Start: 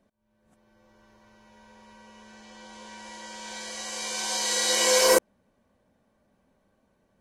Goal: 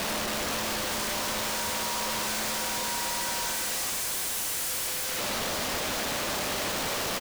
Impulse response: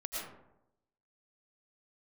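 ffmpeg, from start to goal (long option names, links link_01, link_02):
-filter_complex "[0:a]aeval=exprs='val(0)+0.5*0.0631*sgn(val(0))':channel_layout=same,equalizer=frequency=140:width_type=o:width=0.5:gain=-11,bandreject=frequency=60:width_type=h:width=6,bandreject=frequency=120:width_type=h:width=6,bandreject=frequency=180:width_type=h:width=6,bandreject=frequency=240:width_type=h:width=6,bandreject=frequency=300:width_type=h:width=6,bandreject=frequency=360:width_type=h:width=6,bandreject=frequency=420:width_type=h:width=6,bandreject=frequency=480:width_type=h:width=6,afwtdn=0.0282,alimiter=limit=-17dB:level=0:latency=1,asplit=2[link_01][link_02];[1:a]atrim=start_sample=2205,afade=type=out:start_time=0.23:duration=0.01,atrim=end_sample=10584,adelay=101[link_03];[link_02][link_03]afir=irnorm=-1:irlink=0,volume=-24dB[link_04];[link_01][link_04]amix=inputs=2:normalize=0,asplit=2[link_05][link_06];[link_06]highpass=frequency=720:poles=1,volume=34dB,asoftclip=type=tanh:threshold=-16dB[link_07];[link_05][link_07]amix=inputs=2:normalize=0,lowpass=frequency=2400:poles=1,volume=-6dB,highshelf=frequency=12000:gain=-7,asplit=2[link_08][link_09];[link_09]adelay=90,highpass=300,lowpass=3400,asoftclip=type=hard:threshold=-27dB,volume=-15dB[link_10];[link_08][link_10]amix=inputs=2:normalize=0,aeval=exprs='(mod(16.8*val(0)+1,2)-1)/16.8':channel_layout=same,volume=-2dB"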